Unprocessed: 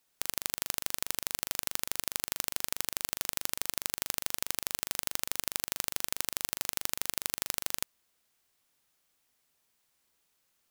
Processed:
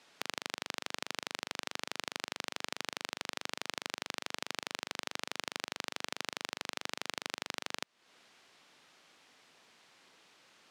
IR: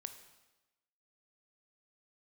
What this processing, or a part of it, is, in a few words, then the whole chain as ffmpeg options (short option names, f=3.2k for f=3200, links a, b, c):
AM radio: -af "highpass=180,lowpass=4.2k,acompressor=threshold=-51dB:ratio=6,asoftclip=type=tanh:threshold=-28dB,volume=18dB"